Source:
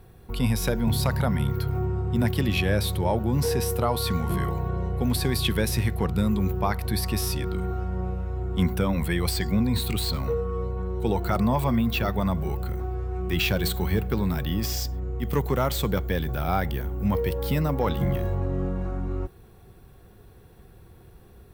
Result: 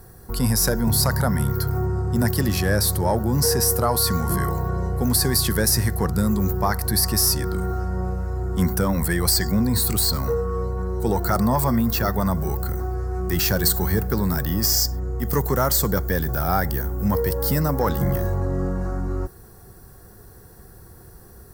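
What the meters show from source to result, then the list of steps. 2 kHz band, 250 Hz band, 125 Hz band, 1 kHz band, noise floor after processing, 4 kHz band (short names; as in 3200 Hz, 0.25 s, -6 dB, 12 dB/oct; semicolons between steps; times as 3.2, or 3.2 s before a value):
+3.0 dB, +2.5 dB, +3.0 dB, +4.0 dB, -46 dBFS, +5.5 dB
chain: high shelf 2200 Hz +11 dB; in parallel at -5 dB: soft clip -22.5 dBFS, distortion -10 dB; on the sum: band shelf 2900 Hz -14.5 dB 1 oct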